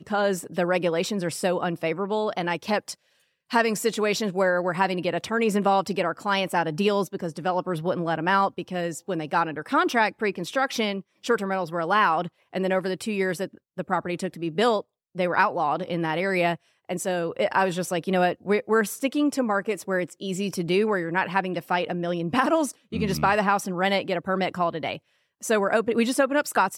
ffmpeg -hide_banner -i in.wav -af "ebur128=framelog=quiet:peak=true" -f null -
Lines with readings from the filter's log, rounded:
Integrated loudness:
  I:         -25.1 LUFS
  Threshold: -35.2 LUFS
Loudness range:
  LRA:         1.9 LU
  Threshold: -45.3 LUFS
  LRA low:   -26.2 LUFS
  LRA high:  -24.3 LUFS
True peak:
  Peak:       -7.3 dBFS